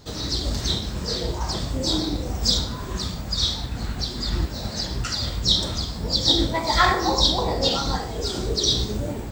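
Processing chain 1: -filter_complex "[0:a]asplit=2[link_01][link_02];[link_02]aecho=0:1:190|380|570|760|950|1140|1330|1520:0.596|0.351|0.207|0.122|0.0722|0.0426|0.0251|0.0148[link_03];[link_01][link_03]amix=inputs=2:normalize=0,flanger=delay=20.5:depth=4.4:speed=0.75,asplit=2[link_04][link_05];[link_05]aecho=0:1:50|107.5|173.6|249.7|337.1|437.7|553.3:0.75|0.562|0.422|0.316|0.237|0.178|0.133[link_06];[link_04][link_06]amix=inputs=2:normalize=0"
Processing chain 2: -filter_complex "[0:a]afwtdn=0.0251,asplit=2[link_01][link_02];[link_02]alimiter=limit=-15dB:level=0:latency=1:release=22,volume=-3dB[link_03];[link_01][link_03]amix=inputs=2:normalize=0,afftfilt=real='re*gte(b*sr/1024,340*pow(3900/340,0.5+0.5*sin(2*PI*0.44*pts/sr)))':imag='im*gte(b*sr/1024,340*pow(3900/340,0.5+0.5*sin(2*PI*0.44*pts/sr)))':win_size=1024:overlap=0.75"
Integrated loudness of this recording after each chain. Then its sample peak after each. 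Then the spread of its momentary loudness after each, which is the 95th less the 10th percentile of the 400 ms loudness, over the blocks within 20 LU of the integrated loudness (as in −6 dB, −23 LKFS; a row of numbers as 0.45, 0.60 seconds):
−21.0, −22.0 LKFS; −4.5, −3.5 dBFS; 8, 12 LU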